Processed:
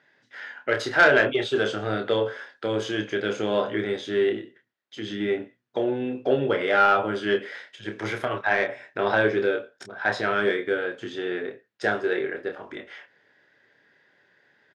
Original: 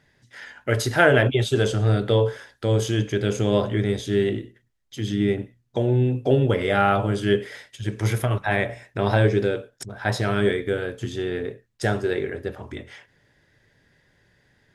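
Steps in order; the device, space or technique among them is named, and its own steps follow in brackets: intercom (BPF 320–3900 Hz; bell 1500 Hz +4.5 dB 0.41 oct; soft clip -9 dBFS, distortion -18 dB; doubler 28 ms -6.5 dB)

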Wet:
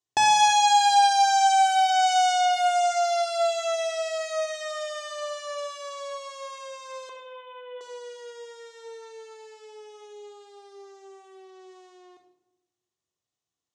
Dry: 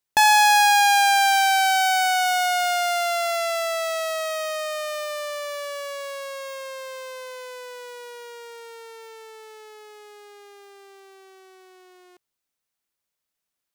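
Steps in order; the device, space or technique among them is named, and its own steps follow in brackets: 7.09–7.81 Chebyshev low-pass 3600 Hz, order 10; car door speaker (speaker cabinet 82–7500 Hz, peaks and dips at 110 Hz +7 dB, 1500 Hz -9 dB, 2300 Hz -9 dB, 4600 Hz -4 dB, 6700 Hz +3 dB); shoebox room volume 3500 m³, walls furnished, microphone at 3.4 m; gain -3.5 dB

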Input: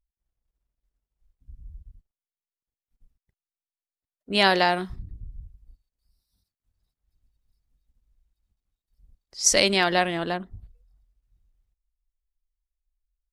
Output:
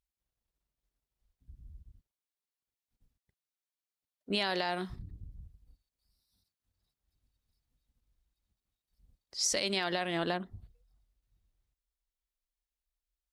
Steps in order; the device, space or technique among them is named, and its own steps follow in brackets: broadcast voice chain (HPF 93 Hz 6 dB/oct; de-esser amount 30%; compressor 5:1, threshold -25 dBFS, peak gain reduction 10.5 dB; bell 3900 Hz +3 dB 0.73 oct; limiter -18 dBFS, peak gain reduction 7 dB); gain -1.5 dB

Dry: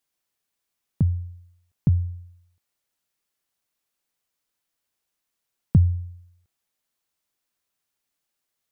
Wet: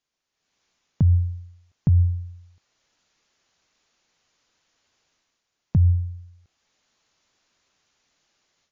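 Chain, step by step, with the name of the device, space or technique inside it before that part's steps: low-bitrate web radio (AGC gain up to 15 dB; limiter -11.5 dBFS, peak gain reduction 10.5 dB; MP3 40 kbps 16000 Hz)

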